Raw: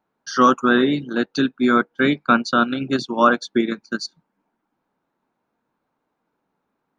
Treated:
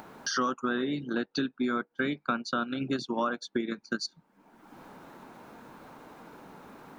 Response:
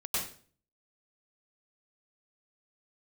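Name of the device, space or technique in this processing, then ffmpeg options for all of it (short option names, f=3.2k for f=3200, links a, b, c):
upward and downward compression: -filter_complex "[0:a]asettb=1/sr,asplit=3[a][b][c];[a]atrim=end=1.104[d];[b]atrim=start=1.1:end=1.64,asetpts=PTS-STARTPTS,afade=t=in:d=0.004:c=qsin,afade=t=out:st=0.536:d=0.004:c=qsin,lowpass=f=5.8k:w=0.5412,lowpass=f=5.8k:w=1.3066[e];[c]atrim=start=1.636[f];[d][e]acrossfade=d=0.004:c1=hsin:c2=qsin[g];[g][f]acrossfade=d=0.004:c1=qsin:c2=hsin,acompressor=mode=upward:threshold=-28dB:ratio=2.5,acompressor=threshold=-28dB:ratio=5"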